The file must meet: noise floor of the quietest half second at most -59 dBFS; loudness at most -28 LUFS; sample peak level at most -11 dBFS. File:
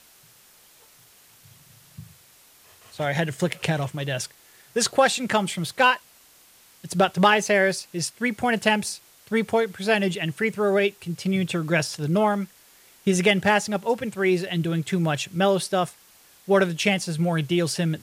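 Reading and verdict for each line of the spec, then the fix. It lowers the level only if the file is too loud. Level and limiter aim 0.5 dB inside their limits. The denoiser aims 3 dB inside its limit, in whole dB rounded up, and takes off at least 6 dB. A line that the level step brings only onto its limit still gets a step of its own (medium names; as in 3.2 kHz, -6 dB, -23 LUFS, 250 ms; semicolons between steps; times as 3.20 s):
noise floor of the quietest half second -54 dBFS: fail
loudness -23.5 LUFS: fail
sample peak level -5.5 dBFS: fail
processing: noise reduction 6 dB, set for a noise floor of -54 dBFS; trim -5 dB; peak limiter -11.5 dBFS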